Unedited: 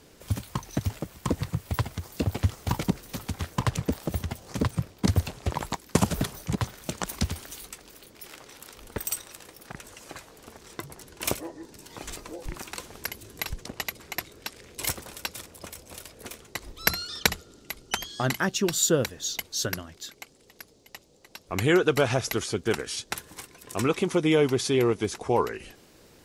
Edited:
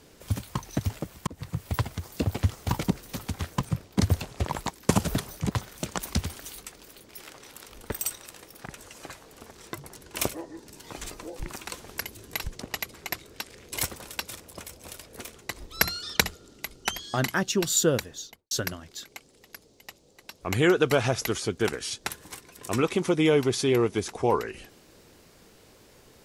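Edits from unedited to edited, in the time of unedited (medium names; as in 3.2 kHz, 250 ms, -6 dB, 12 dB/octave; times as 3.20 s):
1.27–1.63 s: fade in
3.61–4.67 s: delete
19.06–19.57 s: studio fade out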